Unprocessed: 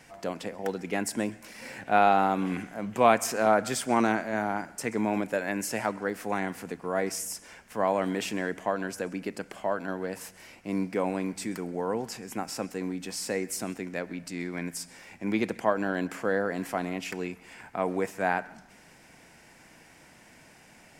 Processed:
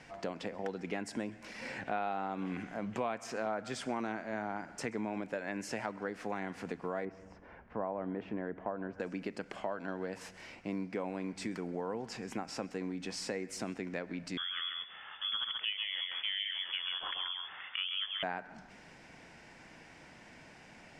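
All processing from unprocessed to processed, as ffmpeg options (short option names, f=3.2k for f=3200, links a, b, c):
-filter_complex "[0:a]asettb=1/sr,asplit=3[a][b][c];[a]atrim=end=7.054[d];[b]atrim=start=7.05:end=9,asetpts=PTS-STARTPTS,afade=t=in:d=0.004:c=qsin,afade=t=out:st=1.946:d=0.004:c=qsin,lowpass=1.2k,equalizer=f=67:w=1.9:g=7[e];[c]atrim=start=8.996[f];[d][e]acrossfade=d=0.004:c1=hsin:c2=qsin[g];[g][f]acrossfade=d=0.004:c1=qsin:c2=hsin,asettb=1/sr,asplit=3[h][i][j];[h]atrim=end=14.374[k];[i]atrim=start=14.37:end=18.23,asetpts=PTS-STARTPTS,afade=t=in:d=0.004:c=qsin,afade=t=out:st=3.856:d=0.004:c=qsin,aecho=1:1:133:0.562,atrim=end_sample=170226,lowpass=f=3.1k:t=q:w=0.5098,lowpass=f=3.1k:t=q:w=0.6013,lowpass=f=3.1k:t=q:w=0.9,lowpass=f=3.1k:t=q:w=2.563,afreqshift=-3600[l];[j]atrim=start=18.226[m];[k][l]acrossfade=d=0.004:c1=hsin:c2=qsin[n];[n][m]acrossfade=d=0.004:c1=qsin:c2=hsin,lowpass=5.1k,acompressor=threshold=-35dB:ratio=4"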